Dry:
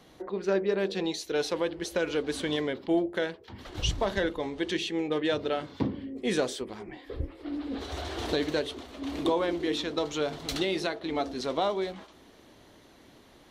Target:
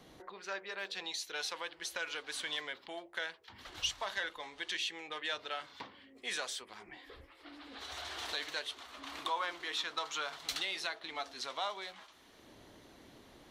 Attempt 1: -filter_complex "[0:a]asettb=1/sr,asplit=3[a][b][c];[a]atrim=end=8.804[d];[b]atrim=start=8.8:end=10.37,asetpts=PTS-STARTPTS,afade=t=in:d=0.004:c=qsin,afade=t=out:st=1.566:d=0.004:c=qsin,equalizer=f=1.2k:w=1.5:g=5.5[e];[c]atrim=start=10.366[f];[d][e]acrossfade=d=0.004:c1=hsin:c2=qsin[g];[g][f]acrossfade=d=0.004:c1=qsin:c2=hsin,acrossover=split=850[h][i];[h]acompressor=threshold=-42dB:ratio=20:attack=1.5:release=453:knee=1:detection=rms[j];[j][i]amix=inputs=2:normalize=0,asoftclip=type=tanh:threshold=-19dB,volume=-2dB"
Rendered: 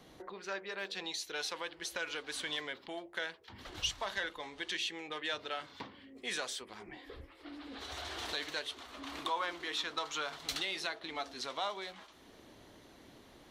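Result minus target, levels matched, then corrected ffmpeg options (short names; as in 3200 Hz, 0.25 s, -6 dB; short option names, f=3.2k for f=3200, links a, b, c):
compressor: peak gain reduction -6.5 dB
-filter_complex "[0:a]asettb=1/sr,asplit=3[a][b][c];[a]atrim=end=8.804[d];[b]atrim=start=8.8:end=10.37,asetpts=PTS-STARTPTS,afade=t=in:d=0.004:c=qsin,afade=t=out:st=1.566:d=0.004:c=qsin,equalizer=f=1.2k:w=1.5:g=5.5[e];[c]atrim=start=10.366[f];[d][e]acrossfade=d=0.004:c1=hsin:c2=qsin[g];[g][f]acrossfade=d=0.004:c1=qsin:c2=hsin,acrossover=split=850[h][i];[h]acompressor=threshold=-49dB:ratio=20:attack=1.5:release=453:knee=1:detection=rms[j];[j][i]amix=inputs=2:normalize=0,asoftclip=type=tanh:threshold=-19dB,volume=-2dB"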